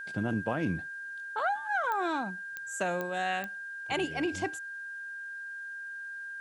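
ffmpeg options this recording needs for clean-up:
-af "adeclick=t=4,bandreject=f=1.6k:w=30,agate=range=-21dB:threshold=-33dB"

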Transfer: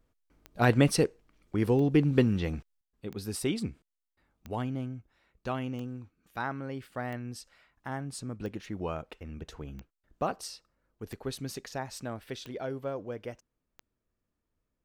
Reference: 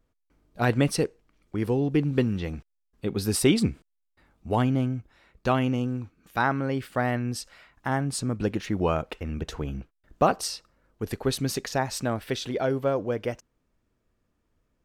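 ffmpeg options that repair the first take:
-af "adeclick=t=4,asetnsamples=n=441:p=0,asendcmd='2.81 volume volume 10dB',volume=0dB"

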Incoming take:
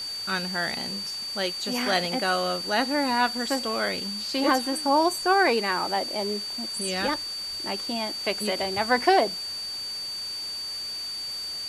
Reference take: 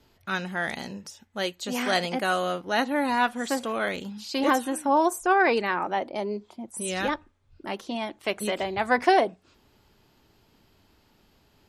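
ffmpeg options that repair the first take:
-af "bandreject=f=4.6k:w=30,afwtdn=0.0079"

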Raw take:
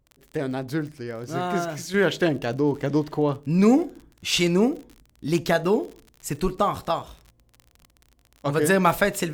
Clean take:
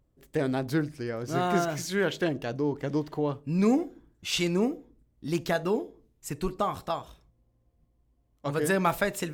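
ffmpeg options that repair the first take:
-af "adeclick=t=4,asetnsamples=n=441:p=0,asendcmd='1.94 volume volume -6dB',volume=0dB"

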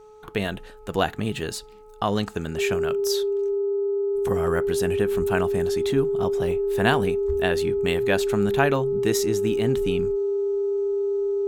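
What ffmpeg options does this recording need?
-af "bandreject=f=427.7:t=h:w=4,bandreject=f=855.4:t=h:w=4,bandreject=f=1.2831k:t=h:w=4,bandreject=f=400:w=30"

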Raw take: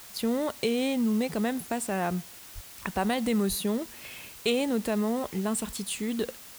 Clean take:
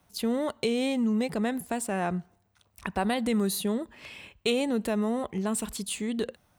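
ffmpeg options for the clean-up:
-filter_complex "[0:a]asplit=3[a][b][c];[a]afade=t=out:st=2.54:d=0.02[d];[b]highpass=f=140:w=0.5412,highpass=f=140:w=1.3066,afade=t=in:st=2.54:d=0.02,afade=t=out:st=2.66:d=0.02[e];[c]afade=t=in:st=2.66:d=0.02[f];[d][e][f]amix=inputs=3:normalize=0,asplit=3[g][h][i];[g]afade=t=out:st=3.48:d=0.02[j];[h]highpass=f=140:w=0.5412,highpass=f=140:w=1.3066,afade=t=in:st=3.48:d=0.02,afade=t=out:st=3.6:d=0.02[k];[i]afade=t=in:st=3.6:d=0.02[l];[j][k][l]amix=inputs=3:normalize=0,afwtdn=0.0045"

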